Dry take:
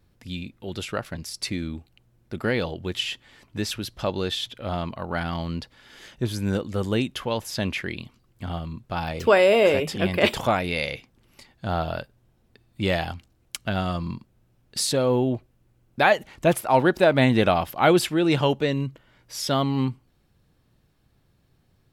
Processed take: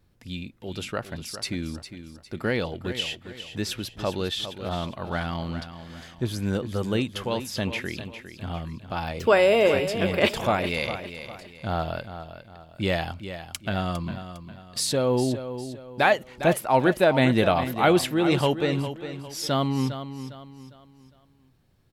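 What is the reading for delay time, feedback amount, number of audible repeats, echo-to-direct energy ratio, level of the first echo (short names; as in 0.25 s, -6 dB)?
0.405 s, 37%, 3, -10.5 dB, -11.0 dB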